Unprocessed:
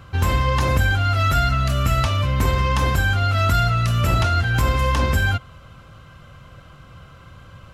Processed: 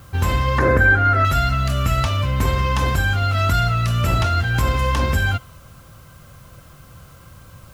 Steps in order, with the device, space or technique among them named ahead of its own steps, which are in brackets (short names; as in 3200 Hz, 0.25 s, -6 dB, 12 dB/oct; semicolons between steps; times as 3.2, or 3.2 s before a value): plain cassette with noise reduction switched in (mismatched tape noise reduction decoder only; wow and flutter 10 cents; white noise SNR 34 dB); 0.58–1.25 EQ curve 160 Hz 0 dB, 420 Hz +12 dB, 880 Hz 0 dB, 1700 Hz +11 dB, 2900 Hz -10 dB